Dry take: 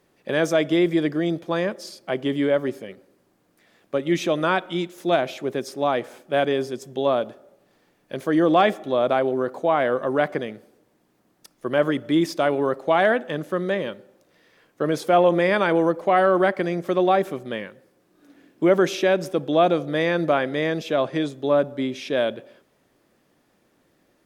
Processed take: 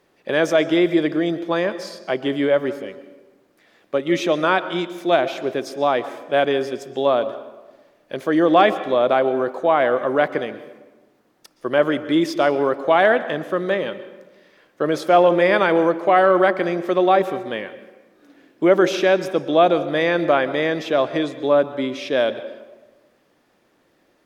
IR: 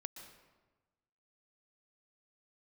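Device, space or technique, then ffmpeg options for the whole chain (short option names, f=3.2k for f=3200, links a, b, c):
filtered reverb send: -filter_complex "[0:a]asplit=2[a][b];[b]highpass=250,lowpass=6.6k[c];[1:a]atrim=start_sample=2205[d];[c][d]afir=irnorm=-1:irlink=0,volume=1.5dB[e];[a][e]amix=inputs=2:normalize=0,volume=-1dB"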